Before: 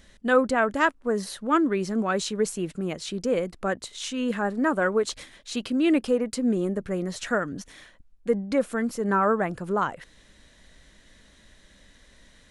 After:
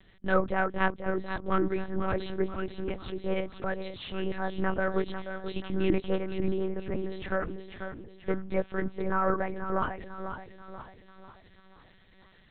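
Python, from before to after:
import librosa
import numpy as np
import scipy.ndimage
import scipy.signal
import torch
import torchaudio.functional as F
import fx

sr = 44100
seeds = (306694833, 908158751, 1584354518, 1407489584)

y = fx.echo_feedback(x, sr, ms=489, feedback_pct=45, wet_db=-8.5)
y = fx.lpc_monotone(y, sr, seeds[0], pitch_hz=190.0, order=8)
y = y * 10.0 ** (-4.5 / 20.0)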